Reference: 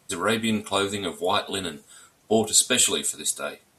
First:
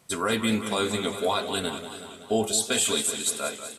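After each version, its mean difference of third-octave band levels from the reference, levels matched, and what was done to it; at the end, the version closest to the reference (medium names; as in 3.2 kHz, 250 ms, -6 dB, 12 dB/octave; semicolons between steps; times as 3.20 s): 6.0 dB: on a send: delay 414 ms -19.5 dB; on the sum: peak limiter -14 dBFS, peak gain reduction 9 dB; modulated delay 188 ms, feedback 64%, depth 101 cents, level -11 dB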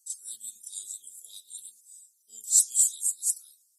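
20.5 dB: random holes in the spectrogram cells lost 24%; inverse Chebyshev high-pass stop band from 2.4 kHz, stop band 50 dB; on a send: reverse echo 31 ms -7.5 dB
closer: first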